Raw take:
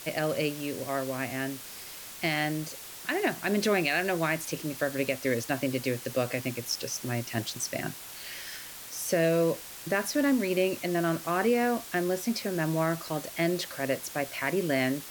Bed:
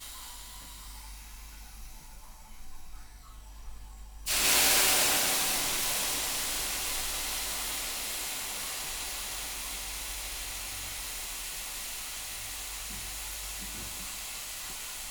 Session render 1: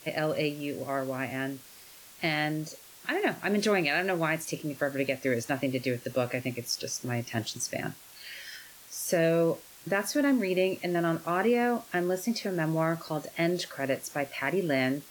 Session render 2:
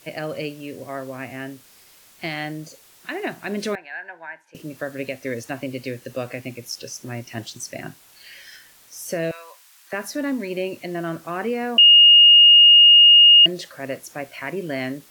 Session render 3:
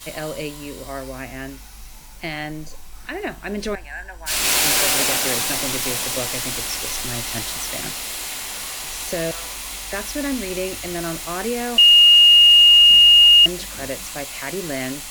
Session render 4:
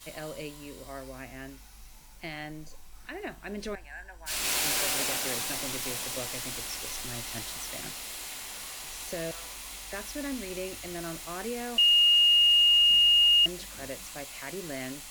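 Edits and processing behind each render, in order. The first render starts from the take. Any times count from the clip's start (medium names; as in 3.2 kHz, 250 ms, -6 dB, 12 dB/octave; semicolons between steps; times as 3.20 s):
noise print and reduce 8 dB
3.75–4.55 s: two resonant band-passes 1.2 kHz, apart 0.8 oct; 9.31–9.93 s: high-pass 950 Hz 24 dB/octave; 11.78–13.46 s: bleep 2.85 kHz -7 dBFS
add bed +6 dB
trim -10.5 dB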